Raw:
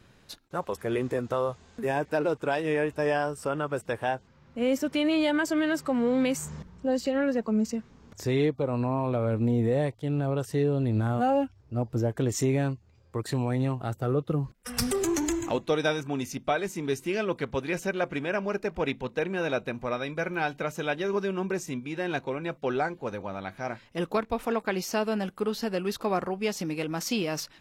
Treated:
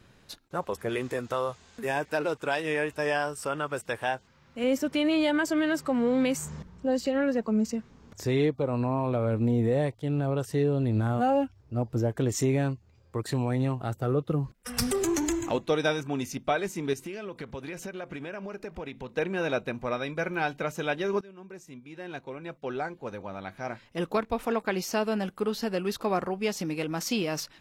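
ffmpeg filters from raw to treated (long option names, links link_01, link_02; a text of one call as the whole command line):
ffmpeg -i in.wav -filter_complex "[0:a]asettb=1/sr,asplit=3[link_01][link_02][link_03];[link_01]atrim=end=0.894[link_04];[link_02]atrim=start=0.89:end=4.64,asetpts=PTS-STARTPTS,afade=type=in:duration=0.004:curve=qsin,afade=type=out:start_time=3.746:duration=0.004:curve=qsin,tiltshelf=frequency=970:gain=-4.5[link_05];[link_03]atrim=start=4.636[link_06];[link_04][link_05]acrossfade=duration=0.004:curve1=hsin:curve2=qsin[link_07];[link_07][link_06]acrossfade=duration=0.004:curve1=qsin:curve2=hsin,asettb=1/sr,asplit=3[link_08][link_09][link_10];[link_08]atrim=end=16.934[link_11];[link_09]atrim=start=16.93:end=19.16,asetpts=PTS-STARTPTS,afade=type=in:duration=0.004:curve=qsin,afade=type=out:start_time=2.226:duration=0.004:curve=qsin,acompressor=threshold=-33dB:ratio=10:attack=3.2:release=140:knee=1:detection=peak[link_12];[link_10]atrim=start=19.156[link_13];[link_11][link_12]acrossfade=duration=0.004:curve1=hsin:curve2=qsin[link_14];[link_14][link_13]acrossfade=duration=0.004:curve1=qsin:curve2=hsin,asplit=2[link_15][link_16];[link_15]atrim=end=21.21,asetpts=PTS-STARTPTS,afade=type=out:start_time=21.206:duration=0.004:curve=hsin:silence=0.0891251[link_17];[link_16]atrim=start=21.21,asetpts=PTS-STARTPTS,afade=type=in:duration=2.99:silence=0.0891251[link_18];[link_17][link_18]concat=n=2:v=0:a=1" out.wav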